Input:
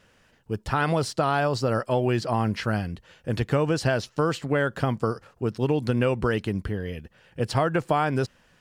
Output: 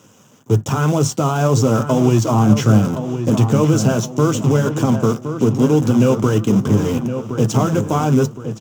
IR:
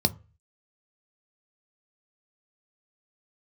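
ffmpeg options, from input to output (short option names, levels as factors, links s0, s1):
-filter_complex "[0:a]highshelf=f=4100:g=10,bandreject=f=5000:w=10,alimiter=limit=0.0794:level=0:latency=1:release=347,acrusher=bits=7:dc=4:mix=0:aa=0.000001,flanger=delay=2:depth=3.6:regen=-64:speed=1.9:shape=triangular,asplit=2[s0][s1];[s1]adelay=1067,lowpass=f=2600:p=1,volume=0.355,asplit=2[s2][s3];[s3]adelay=1067,lowpass=f=2600:p=1,volume=0.44,asplit=2[s4][s5];[s5]adelay=1067,lowpass=f=2600:p=1,volume=0.44,asplit=2[s6][s7];[s7]adelay=1067,lowpass=f=2600:p=1,volume=0.44,asplit=2[s8][s9];[s9]adelay=1067,lowpass=f=2600:p=1,volume=0.44[s10];[s0][s2][s4][s6][s8][s10]amix=inputs=6:normalize=0[s11];[1:a]atrim=start_sample=2205,afade=t=out:st=0.16:d=0.01,atrim=end_sample=7497,asetrate=61740,aresample=44100[s12];[s11][s12]afir=irnorm=-1:irlink=0,volume=2"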